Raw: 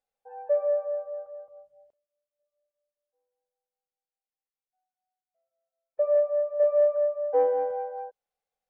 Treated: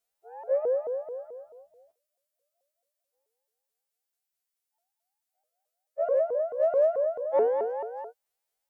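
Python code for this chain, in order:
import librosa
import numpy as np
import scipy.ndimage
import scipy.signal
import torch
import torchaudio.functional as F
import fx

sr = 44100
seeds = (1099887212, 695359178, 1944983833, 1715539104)

y = fx.freq_snap(x, sr, grid_st=2)
y = fx.vibrato_shape(y, sr, shape='saw_up', rate_hz=4.6, depth_cents=250.0)
y = F.gain(torch.from_numpy(y), -1.0).numpy()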